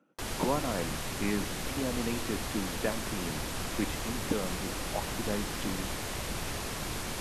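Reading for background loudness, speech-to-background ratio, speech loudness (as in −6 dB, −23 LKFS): −35.5 LKFS, −1.0 dB, −36.5 LKFS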